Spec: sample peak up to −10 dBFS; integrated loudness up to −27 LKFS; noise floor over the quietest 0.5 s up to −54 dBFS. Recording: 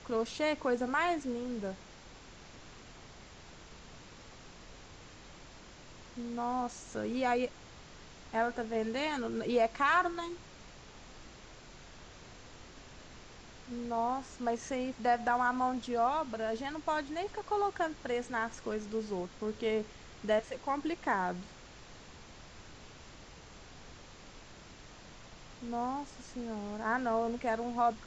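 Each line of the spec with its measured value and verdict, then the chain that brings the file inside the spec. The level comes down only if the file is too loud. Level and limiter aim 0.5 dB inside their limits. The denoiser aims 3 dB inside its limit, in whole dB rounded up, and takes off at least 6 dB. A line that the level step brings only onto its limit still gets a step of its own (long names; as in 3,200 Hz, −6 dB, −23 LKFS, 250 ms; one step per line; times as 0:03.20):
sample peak −17.0 dBFS: in spec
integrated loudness −34.0 LKFS: in spec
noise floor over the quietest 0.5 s −53 dBFS: out of spec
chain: broadband denoise 6 dB, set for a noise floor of −53 dBFS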